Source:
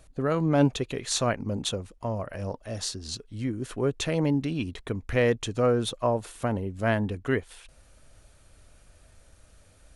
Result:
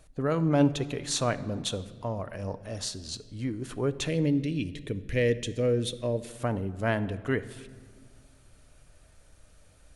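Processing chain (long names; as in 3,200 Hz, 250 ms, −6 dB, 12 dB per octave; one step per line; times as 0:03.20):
0:04.08–0:06.29: flat-topped bell 1,000 Hz −14.5 dB 1.3 octaves
rectangular room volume 2,200 cubic metres, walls mixed, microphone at 0.44 metres
level −2 dB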